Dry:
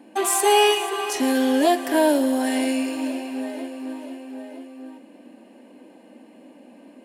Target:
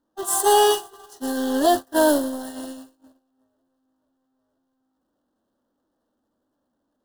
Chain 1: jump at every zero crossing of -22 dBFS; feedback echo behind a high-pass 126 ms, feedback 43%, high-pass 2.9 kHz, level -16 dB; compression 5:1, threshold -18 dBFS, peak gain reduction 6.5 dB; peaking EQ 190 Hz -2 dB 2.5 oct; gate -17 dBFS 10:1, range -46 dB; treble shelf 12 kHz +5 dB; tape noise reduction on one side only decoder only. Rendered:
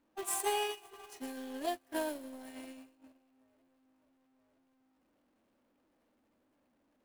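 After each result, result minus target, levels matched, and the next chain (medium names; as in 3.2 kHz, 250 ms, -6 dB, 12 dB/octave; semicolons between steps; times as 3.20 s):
compression: peak gain reduction +6.5 dB; 2 kHz band +4.5 dB
jump at every zero crossing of -22 dBFS; peaking EQ 190 Hz -2 dB 2.5 oct; feedback echo behind a high-pass 126 ms, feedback 43%, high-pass 2.9 kHz, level -16 dB; gate -17 dBFS 10:1, range -46 dB; treble shelf 12 kHz +5 dB; tape noise reduction on one side only decoder only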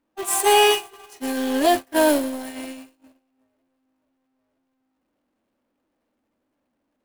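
2 kHz band +4.5 dB
jump at every zero crossing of -22 dBFS; peaking EQ 190 Hz -2 dB 2.5 oct; feedback echo behind a high-pass 126 ms, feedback 43%, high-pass 2.9 kHz, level -16 dB; gate -17 dBFS 10:1, range -46 dB; Butterworth band-stop 2.3 kHz, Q 1.6; treble shelf 12 kHz +5 dB; tape noise reduction on one side only decoder only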